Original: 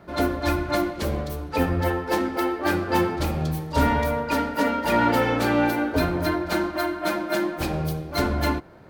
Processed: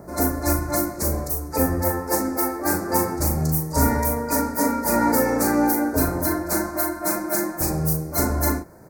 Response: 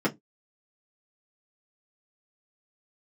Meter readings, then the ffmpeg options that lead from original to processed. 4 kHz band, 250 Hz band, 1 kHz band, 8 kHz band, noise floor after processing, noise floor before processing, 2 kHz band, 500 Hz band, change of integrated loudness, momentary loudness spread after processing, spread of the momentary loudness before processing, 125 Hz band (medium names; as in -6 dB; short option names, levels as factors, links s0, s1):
-3.0 dB, +1.5 dB, 0.0 dB, +14.5 dB, -35 dBFS, -36 dBFS, -3.0 dB, 0.0 dB, +2.0 dB, 4 LU, 6 LU, +1.5 dB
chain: -filter_complex "[0:a]acrossover=split=880|3400[s0][s1][s2];[s0]acompressor=mode=upward:threshold=0.0158:ratio=2.5[s3];[s3][s1][s2]amix=inputs=3:normalize=0,aexciter=amount=2.2:drive=9:freq=2000,asuperstop=centerf=3100:order=4:qfactor=0.6,asplit=2[s4][s5];[s5]adelay=38,volume=0.531[s6];[s4][s6]amix=inputs=2:normalize=0"